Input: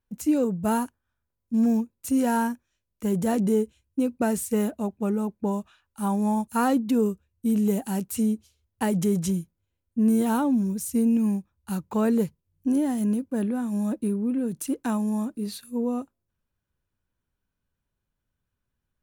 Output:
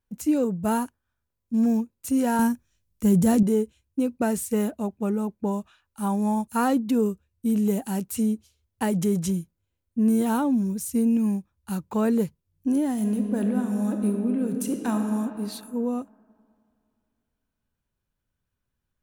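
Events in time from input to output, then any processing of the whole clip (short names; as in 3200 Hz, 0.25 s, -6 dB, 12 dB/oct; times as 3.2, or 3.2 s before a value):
2.39–3.43 tone controls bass +10 dB, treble +6 dB
12.92–15 reverb throw, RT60 2.6 s, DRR 4 dB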